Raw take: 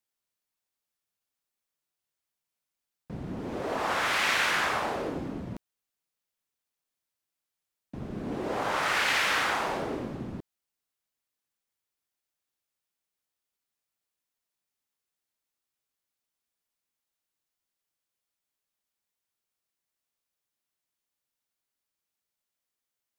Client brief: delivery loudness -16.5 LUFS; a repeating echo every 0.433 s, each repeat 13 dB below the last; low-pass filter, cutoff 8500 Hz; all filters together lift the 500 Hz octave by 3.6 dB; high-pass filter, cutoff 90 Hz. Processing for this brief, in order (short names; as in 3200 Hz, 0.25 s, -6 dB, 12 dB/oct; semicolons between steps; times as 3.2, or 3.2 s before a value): HPF 90 Hz; LPF 8500 Hz; bell 500 Hz +4.5 dB; feedback echo 0.433 s, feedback 22%, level -13 dB; gain +11.5 dB